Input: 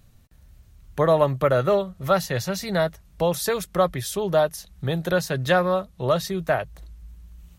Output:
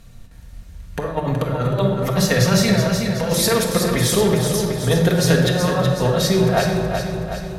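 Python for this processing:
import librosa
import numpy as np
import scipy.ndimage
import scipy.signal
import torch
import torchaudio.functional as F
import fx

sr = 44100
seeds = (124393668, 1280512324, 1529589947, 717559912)

y = scipy.signal.sosfilt(scipy.signal.butter(2, 12000.0, 'lowpass', fs=sr, output='sos'), x)
y = fx.hum_notches(y, sr, base_hz=50, count=9)
y = fx.over_compress(y, sr, threshold_db=-25.0, ratio=-0.5)
y = fx.echo_feedback(y, sr, ms=373, feedback_pct=55, wet_db=-6.5)
y = fx.room_shoebox(y, sr, seeds[0], volume_m3=1600.0, walls='mixed', distance_m=1.7)
y = F.gain(torch.from_numpy(y), 5.0).numpy()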